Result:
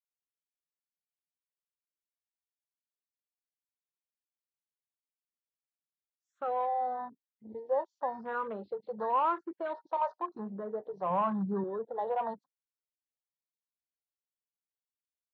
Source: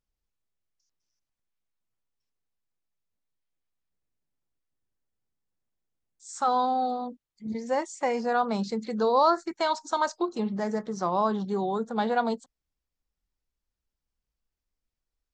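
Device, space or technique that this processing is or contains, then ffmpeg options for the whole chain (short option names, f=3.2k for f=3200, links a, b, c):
barber-pole phaser into a guitar amplifier: -filter_complex "[0:a]asplit=2[a][b];[b]afreqshift=0.93[c];[a][c]amix=inputs=2:normalize=1,asoftclip=type=tanh:threshold=-23dB,highpass=97,equalizer=f=240:t=q:w=4:g=-9,equalizer=f=540:t=q:w=4:g=6,equalizer=f=1k:t=q:w=4:g=7,equalizer=f=2.2k:t=q:w=4:g=-8,lowpass=f=3.8k:w=0.5412,lowpass=f=3.8k:w=1.3066,afwtdn=0.00794,asettb=1/sr,asplit=3[d][e][f];[d]atrim=end=11.104[g];[e]atrim=start=11.1:end=11.64,asetpts=PTS-STARTPTS,afade=t=in:d=0.004:c=qsin,afade=t=out:st=0.536:d=0.004:c=qsin,equalizer=f=160:w=0.67:g=8.5[h];[f]atrim=start=11.636[i];[g][h]acrossfade=d=0.004:c1=hsin:c2=qsin[j];[j][i]acrossfade=d=0.004:c1=qsin:c2=hsin,volume=-4.5dB"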